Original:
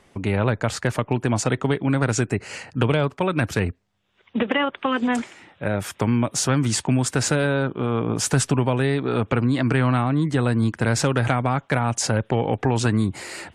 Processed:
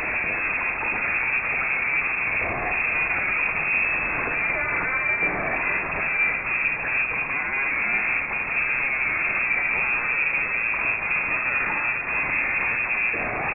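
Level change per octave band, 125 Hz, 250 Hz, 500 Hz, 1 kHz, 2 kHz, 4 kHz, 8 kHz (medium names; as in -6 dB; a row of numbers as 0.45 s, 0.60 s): -20.5 dB, -17.0 dB, -11.0 dB, -2.0 dB, +10.0 dB, under -15 dB, under -40 dB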